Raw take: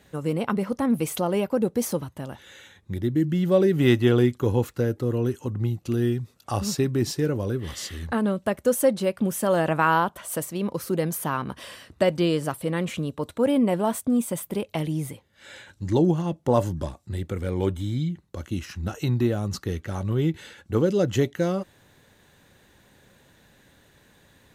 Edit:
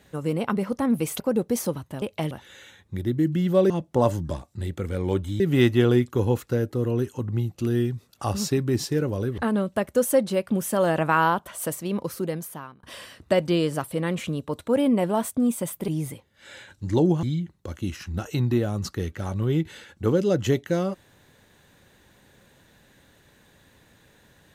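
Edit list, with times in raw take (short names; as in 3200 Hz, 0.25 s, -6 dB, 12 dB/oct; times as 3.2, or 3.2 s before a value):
1.2–1.46 cut
7.65–8.08 cut
10.7–11.53 fade out
14.58–14.87 move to 2.28
16.22–17.92 move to 3.67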